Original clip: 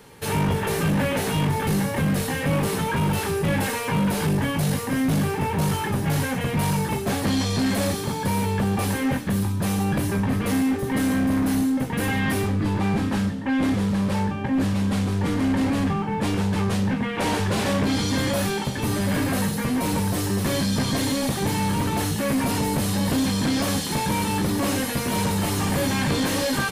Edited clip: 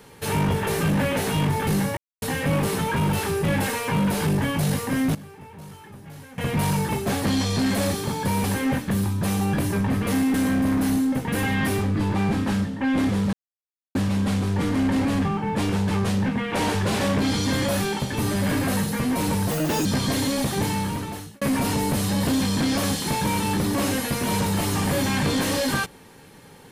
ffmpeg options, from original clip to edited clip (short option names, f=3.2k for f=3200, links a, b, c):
-filter_complex "[0:a]asplit=12[a][b][c][d][e][f][g][h][i][j][k][l];[a]atrim=end=1.97,asetpts=PTS-STARTPTS,afade=t=out:st=1.966:d=0.004:c=hsin[m];[b]atrim=start=1.97:end=2.22,asetpts=PTS-STARTPTS,volume=0[n];[c]atrim=start=2.22:end=5.15,asetpts=PTS-STARTPTS,afade=t=in:d=0.004:c=hsin,afade=t=out:st=2.8:d=0.13:c=log:silence=0.11885[o];[d]atrim=start=5.15:end=6.38,asetpts=PTS-STARTPTS,volume=-18.5dB[p];[e]atrim=start=6.38:end=8.442,asetpts=PTS-STARTPTS,afade=t=in:d=0.13:c=log:silence=0.11885[q];[f]atrim=start=8.828:end=10.732[r];[g]atrim=start=10.988:end=13.98,asetpts=PTS-STARTPTS,afade=t=out:st=2.988:d=0.004:c=hsin[s];[h]atrim=start=13.98:end=14.6,asetpts=PTS-STARTPTS,volume=0[t];[i]atrim=start=14.6:end=20.164,asetpts=PTS-STARTPTS,afade=t=in:d=0.004:c=hsin[u];[j]atrim=start=20.16:end=20.7,asetpts=PTS-STARTPTS,asetrate=69237,aresample=44100,atrim=end_sample=15168,asetpts=PTS-STARTPTS[v];[k]atrim=start=20.696:end=22.26,asetpts=PTS-STARTPTS,afade=t=out:st=0.774:d=0.79[w];[l]atrim=start=22.26,asetpts=PTS-STARTPTS,afade=t=in:d=0.004:c=hsin[x];[m][n][o][p][q]concat=n=5:v=0:a=1[y];[y][r]acrossfade=d=0.004:c1=hsin:c2=hsin[z];[s][t][u]concat=n=3:v=0:a=1[aa];[z][aa]acrossfade=d=0.004:c1=hsin:c2=hsin[ab];[ab][v]acrossfade=d=0.004:c1=hsin:c2=hsin[ac];[w][x]concat=n=2:v=0:a=1[ad];[ac][ad]acrossfade=d=0.004:c1=hsin:c2=hsin"